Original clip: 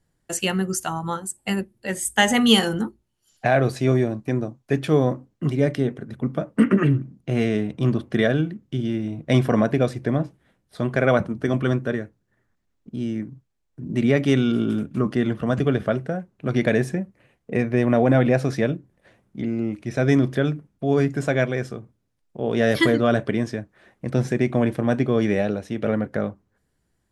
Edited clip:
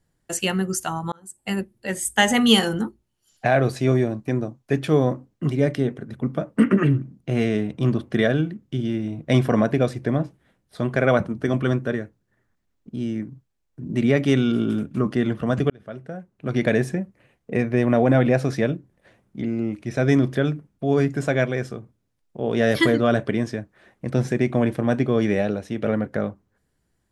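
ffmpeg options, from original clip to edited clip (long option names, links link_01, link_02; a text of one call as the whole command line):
ffmpeg -i in.wav -filter_complex "[0:a]asplit=3[link_01][link_02][link_03];[link_01]atrim=end=1.12,asetpts=PTS-STARTPTS,afade=type=out:start_time=1.116:duration=0.004:curve=hsin[link_04];[link_02]atrim=start=1.12:end=15.7,asetpts=PTS-STARTPTS,afade=type=in:duration=0.48,afade=type=out:start_time=14.576:duration=0.004:curve=hsin[link_05];[link_03]atrim=start=15.7,asetpts=PTS-STARTPTS,afade=type=in:duration=0.99[link_06];[link_04][link_05][link_06]concat=n=3:v=0:a=1" out.wav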